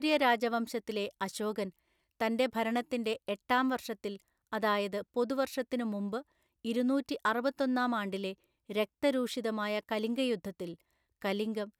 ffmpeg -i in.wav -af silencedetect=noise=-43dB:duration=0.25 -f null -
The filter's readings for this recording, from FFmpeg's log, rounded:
silence_start: 1.69
silence_end: 2.20 | silence_duration: 0.51
silence_start: 4.16
silence_end: 4.53 | silence_duration: 0.37
silence_start: 6.21
silence_end: 6.65 | silence_duration: 0.43
silence_start: 8.33
silence_end: 8.70 | silence_duration: 0.36
silence_start: 10.74
silence_end: 11.22 | silence_duration: 0.48